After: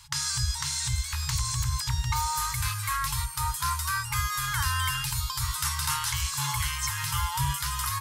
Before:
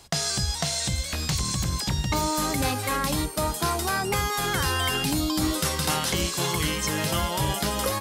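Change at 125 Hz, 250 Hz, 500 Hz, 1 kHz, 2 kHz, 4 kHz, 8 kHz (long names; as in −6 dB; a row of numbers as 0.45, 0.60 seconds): −1.5 dB, below −15 dB, below −40 dB, −2.5 dB, −2.5 dB, −3.5 dB, −1.0 dB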